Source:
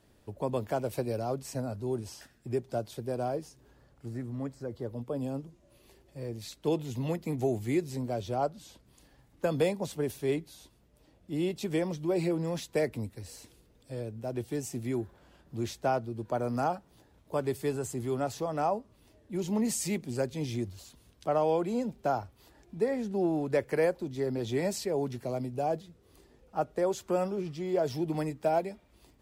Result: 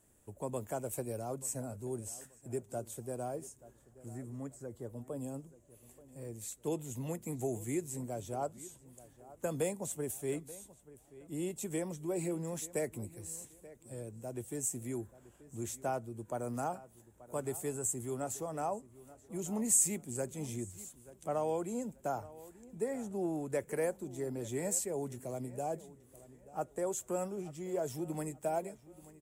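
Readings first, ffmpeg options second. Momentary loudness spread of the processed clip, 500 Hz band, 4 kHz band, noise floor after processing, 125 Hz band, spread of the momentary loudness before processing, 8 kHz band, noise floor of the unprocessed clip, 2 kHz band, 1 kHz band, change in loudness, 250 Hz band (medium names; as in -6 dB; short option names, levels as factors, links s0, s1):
15 LU, -7.0 dB, -10.5 dB, -63 dBFS, -7.0 dB, 11 LU, +7.0 dB, -64 dBFS, -8.0 dB, -7.0 dB, -5.5 dB, -7.0 dB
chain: -filter_complex "[0:a]highshelf=f=6000:t=q:w=3:g=9.5,asplit=2[s0][s1];[s1]adelay=882,lowpass=f=3200:p=1,volume=0.126,asplit=2[s2][s3];[s3]adelay=882,lowpass=f=3200:p=1,volume=0.32,asplit=2[s4][s5];[s5]adelay=882,lowpass=f=3200:p=1,volume=0.32[s6];[s0][s2][s4][s6]amix=inputs=4:normalize=0,volume=0.447"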